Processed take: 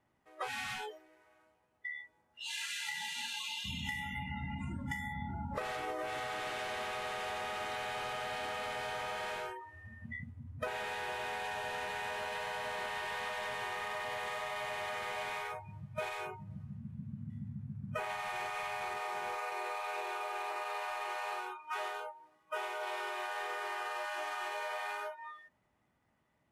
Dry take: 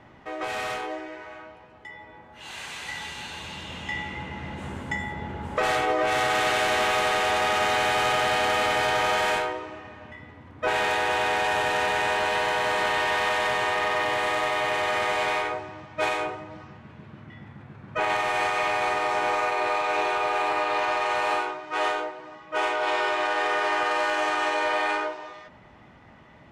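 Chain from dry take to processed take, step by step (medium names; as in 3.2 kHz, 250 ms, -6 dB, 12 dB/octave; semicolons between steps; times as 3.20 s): CVSD coder 64 kbps; spectral noise reduction 28 dB; 2.64–3.64 s: high-pass 130 Hz -> 490 Hz 24 dB/octave; compression 12:1, threshold -39 dBFS, peak gain reduction 18.5 dB; trim +3 dB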